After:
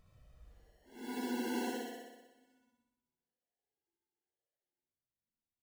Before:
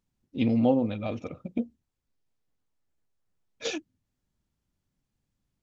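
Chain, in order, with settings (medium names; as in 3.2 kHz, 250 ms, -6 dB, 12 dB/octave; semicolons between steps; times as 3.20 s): vibrato 1.4 Hz 63 cents; granulator 100 ms; wah-wah 2.4 Hz 360–1400 Hz, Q 13; sample-and-hold 36×; Paulstretch 6.2×, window 0.10 s, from 1.34 s; flutter echo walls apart 10.6 m, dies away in 1.1 s; trim +7.5 dB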